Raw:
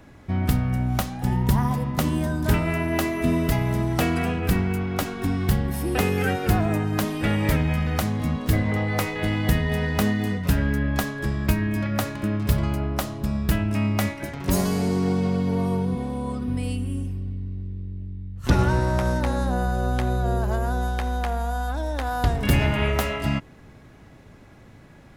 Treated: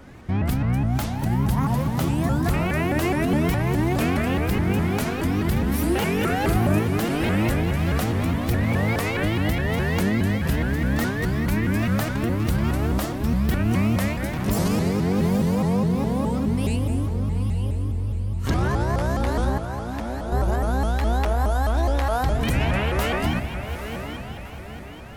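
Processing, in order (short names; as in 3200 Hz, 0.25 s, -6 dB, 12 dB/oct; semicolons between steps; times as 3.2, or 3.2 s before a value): limiter -18.5 dBFS, peak gain reduction 10 dB; 5.52–6.79 doubler 39 ms -4 dB; 19.58–20.32 ladder high-pass 240 Hz, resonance 40%; diffused feedback echo 0.841 s, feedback 43%, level -8.5 dB; shaped vibrato saw up 4.8 Hz, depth 250 cents; gain +4 dB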